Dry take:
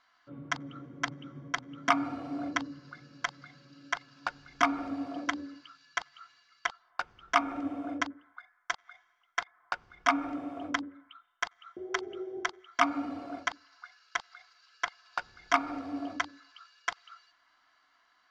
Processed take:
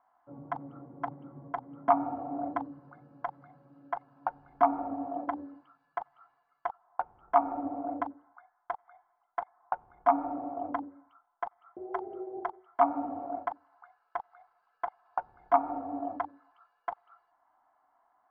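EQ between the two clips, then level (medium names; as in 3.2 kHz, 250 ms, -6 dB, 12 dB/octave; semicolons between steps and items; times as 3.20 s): resonant low-pass 820 Hz, resonance Q 5.1; -3.0 dB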